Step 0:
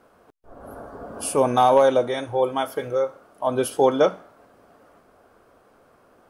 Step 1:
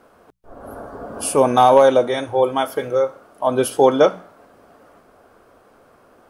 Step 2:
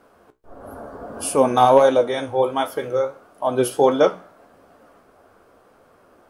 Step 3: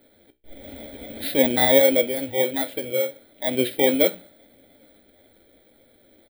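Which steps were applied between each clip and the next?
mains-hum notches 60/120/180 Hz; level +4.5 dB
flanger 1.5 Hz, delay 9.8 ms, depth 6.9 ms, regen +62%; level +2 dB
samples in bit-reversed order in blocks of 16 samples; phaser with its sweep stopped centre 2,600 Hz, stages 4; comb filter 3.5 ms, depth 37%; level −1 dB

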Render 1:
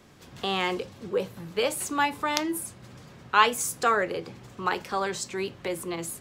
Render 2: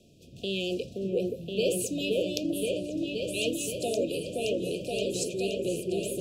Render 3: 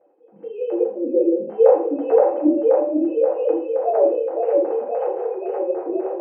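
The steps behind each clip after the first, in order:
brick-wall band-stop 720–2,400 Hz; rotating-speaker cabinet horn 0.9 Hz; echo whose low-pass opens from repeat to repeat 523 ms, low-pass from 750 Hz, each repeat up 2 octaves, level 0 dB
three sine waves on the formant tracks; low-pass with resonance 780 Hz, resonance Q 7.2; convolution reverb RT60 0.50 s, pre-delay 3 ms, DRR −5.5 dB; level −1 dB

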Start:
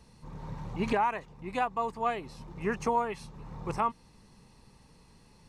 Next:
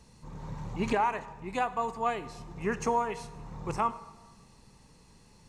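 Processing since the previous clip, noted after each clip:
parametric band 7,000 Hz +7 dB 0.45 octaves
convolution reverb RT60 1.2 s, pre-delay 23 ms, DRR 13.5 dB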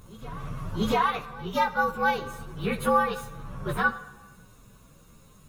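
partials spread apart or drawn together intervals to 116%
backwards echo 687 ms −20.5 dB
level +7.5 dB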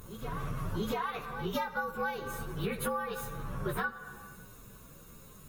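graphic EQ with 15 bands 400 Hz +4 dB, 1,600 Hz +3 dB, 16,000 Hz +12 dB
downward compressor 16 to 1, threshold −30 dBFS, peak gain reduction 15.5 dB

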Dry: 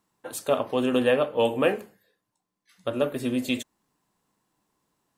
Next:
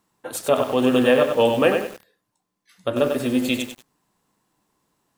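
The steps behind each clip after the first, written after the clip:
feedback echo at a low word length 95 ms, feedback 35%, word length 7 bits, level −5.5 dB
level +4.5 dB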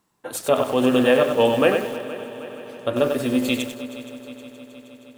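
echo machine with several playback heads 157 ms, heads second and third, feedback 65%, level −17 dB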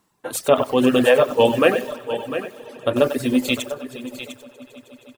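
single-tap delay 701 ms −11 dB
reverb reduction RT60 1.2 s
level +3.5 dB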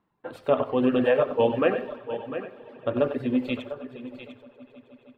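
high-frequency loss of the air 430 metres
on a send at −14 dB: convolution reverb RT60 0.50 s, pre-delay 57 ms
on the sum: level −5 dB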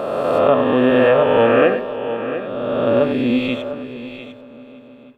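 peak hold with a rise ahead of every peak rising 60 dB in 2.27 s
level +4.5 dB

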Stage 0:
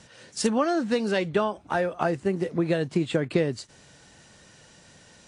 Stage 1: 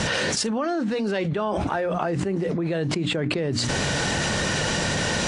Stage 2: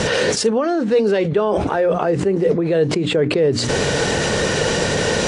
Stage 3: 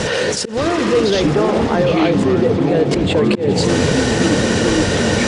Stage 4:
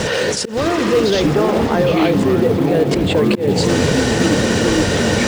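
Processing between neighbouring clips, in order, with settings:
high-shelf EQ 7,600 Hz −11.5 dB; mains-hum notches 60/120/180/240/300 Hz; envelope flattener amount 100%; level −5 dB
parametric band 450 Hz +10.5 dB 0.56 octaves; level +3.5 dB
echo that builds up and dies away 83 ms, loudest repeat 5, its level −17 dB; delay with pitch and tempo change per echo 570 ms, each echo −7 semitones, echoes 2; volume swells 155 ms
floating-point word with a short mantissa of 4 bits

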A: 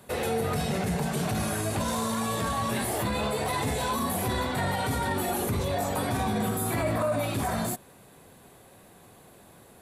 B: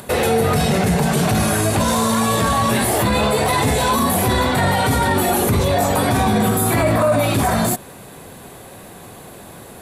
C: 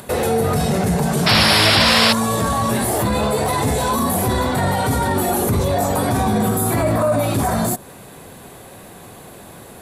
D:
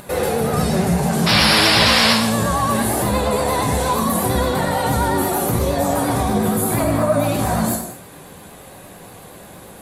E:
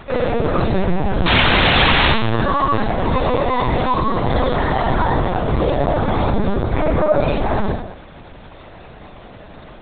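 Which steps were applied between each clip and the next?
in parallel at +3 dB: brickwall limiter −26.5 dBFS, peak gain reduction 9.5 dB; on the sum: upward compression, threshold −44 dBFS; level +7 dB
dynamic equaliser 2,600 Hz, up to −6 dB, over −37 dBFS, Q 0.91; sound drawn into the spectrogram noise, 0:01.26–0:02.13, 490–5,600 Hz −14 dBFS; level −1 dB
reverb whose tail is shaped and stops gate 270 ms falling, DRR −1 dB; pitch vibrato 8.6 Hz 53 cents; level −3.5 dB
linear-prediction vocoder at 8 kHz pitch kept; level +2 dB

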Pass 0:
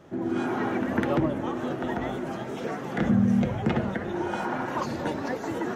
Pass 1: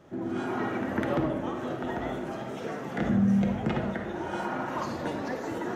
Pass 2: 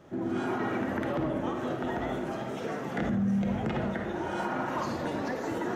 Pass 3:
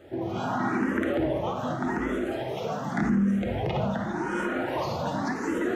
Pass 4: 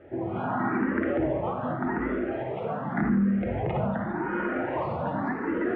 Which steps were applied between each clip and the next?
convolution reverb RT60 0.60 s, pre-delay 10 ms, DRR 5 dB; level −3.5 dB
brickwall limiter −22.5 dBFS, peak gain reduction 7 dB; level +1 dB
frequency shifter mixed with the dry sound +0.87 Hz; level +6.5 dB
low-pass filter 2,300 Hz 24 dB per octave

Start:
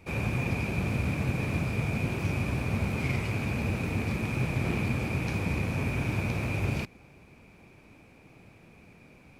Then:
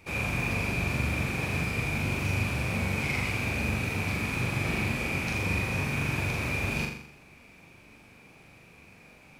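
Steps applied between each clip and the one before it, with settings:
tilt shelving filter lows −4 dB, about 940 Hz
on a send: flutter between parallel walls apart 7.1 metres, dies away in 0.64 s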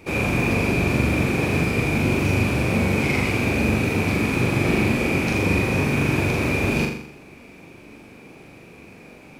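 parametric band 340 Hz +9.5 dB 1.7 octaves
level +5.5 dB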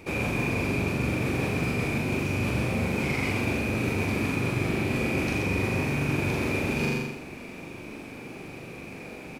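reversed playback
downward compressor 6 to 1, threshold −28 dBFS, peak gain reduction 12.5 dB
reversed playback
single-tap delay 132 ms −7 dB
level +3 dB

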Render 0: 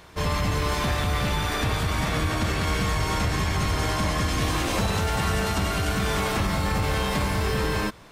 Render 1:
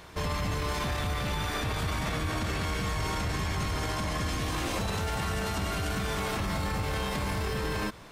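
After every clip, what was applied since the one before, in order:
brickwall limiter −22.5 dBFS, peak gain reduction 8.5 dB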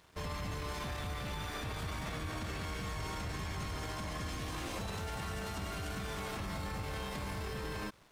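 dead-zone distortion −50.5 dBFS
level −8 dB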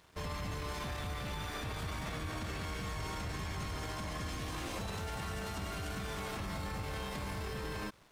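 no processing that can be heard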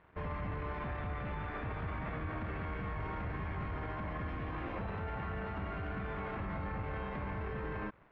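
low-pass filter 2,200 Hz 24 dB per octave
level +1 dB

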